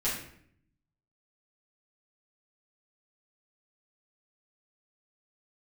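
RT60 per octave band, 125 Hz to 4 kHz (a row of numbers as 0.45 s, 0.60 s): 1.2 s, 0.95 s, 0.70 s, 0.60 s, 0.65 s, 0.50 s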